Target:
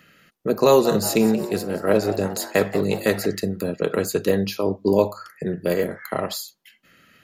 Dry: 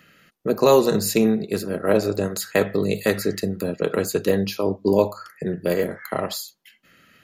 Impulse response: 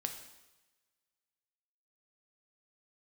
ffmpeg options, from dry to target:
-filter_complex "[0:a]asettb=1/sr,asplit=3[a][b][c];[a]atrim=end=0.674[d];[b]atrim=start=0.67:end=3.26,asetpts=PTS-STARTPTS,afade=t=in:d=0.004:c=qsin,afade=t=out:st=2.586:d=0.004:c=qsin,asplit=5[e][f][g][h][i];[f]adelay=179,afreqshift=140,volume=-14dB[j];[g]adelay=358,afreqshift=280,volume=-20.7dB[k];[h]adelay=537,afreqshift=420,volume=-27.5dB[l];[i]adelay=716,afreqshift=560,volume=-34.2dB[m];[e][j][k][l][m]amix=inputs=5:normalize=0,atrim=end_sample=114219[n];[c]atrim=start=3.256[o];[d][n]acrossfade=d=0.004:c1=hsin:c2=qsin[p];[p][o]acrossfade=d=0.004:c1=qsin:c2=hsin"

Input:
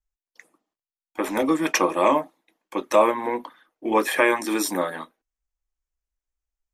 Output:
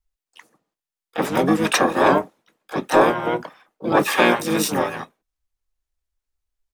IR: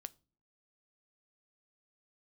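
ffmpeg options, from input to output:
-filter_complex "[0:a]acontrast=30,asplit=4[a][b][c][d];[b]asetrate=22050,aresample=44100,atempo=2,volume=-9dB[e];[c]asetrate=29433,aresample=44100,atempo=1.49831,volume=-3dB[f];[d]asetrate=66075,aresample=44100,atempo=0.66742,volume=-4dB[g];[a][e][f][g]amix=inputs=4:normalize=0,volume=-4.5dB"

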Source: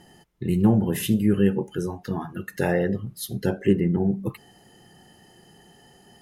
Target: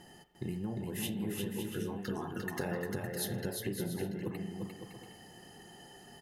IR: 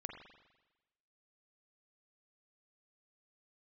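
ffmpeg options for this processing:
-filter_complex "[0:a]acompressor=threshold=-31dB:ratio=12,aecho=1:1:350|560|686|761.6|807:0.631|0.398|0.251|0.158|0.1,asplit=2[a][b];[1:a]atrim=start_sample=2205,lowshelf=f=200:g=-12[c];[b][c]afir=irnorm=-1:irlink=0,volume=0.5dB[d];[a][d]amix=inputs=2:normalize=0,volume=-6dB"

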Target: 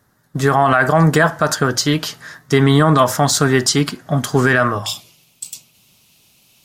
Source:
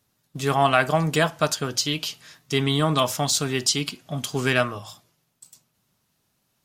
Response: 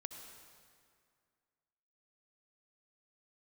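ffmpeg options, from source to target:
-af "asetnsamples=n=441:p=0,asendcmd='4.86 highshelf g 6',highshelf=f=2.1k:t=q:w=3:g=-6,alimiter=level_in=13.5dB:limit=-1dB:release=50:level=0:latency=1,volume=-1.5dB"

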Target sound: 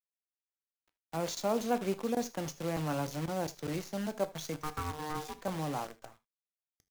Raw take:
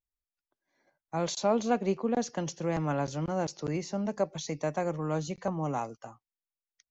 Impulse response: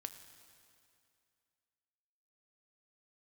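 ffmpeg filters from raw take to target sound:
-filter_complex "[0:a]asettb=1/sr,asplit=3[a][b][c];[a]atrim=end=4.634[d];[b]atrim=start=4.63:end=5.35,asetpts=PTS-STARTPTS,afade=t=in:d=0.004:c=qsin,afade=t=out:st=0.716:d=0.004:c=qsin,aeval=exprs='val(0)*sin(2*PI*610*n/s)':c=same[e];[c]atrim=start=5.346[f];[d][e]acrossfade=d=0.004:c1=hsin:c2=qsin[g];[g][f]acrossfade=d=0.004:c1=qsin:c2=hsin,acrusher=bits=7:dc=4:mix=0:aa=0.000001[h];[1:a]atrim=start_sample=2205,atrim=end_sample=3528[i];[h][i]afir=irnorm=-1:irlink=0"

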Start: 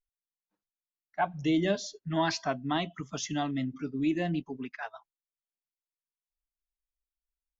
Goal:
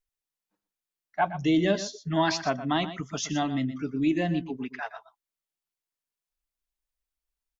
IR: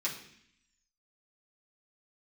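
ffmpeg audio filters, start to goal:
-af "aecho=1:1:120:0.224,volume=3.5dB"

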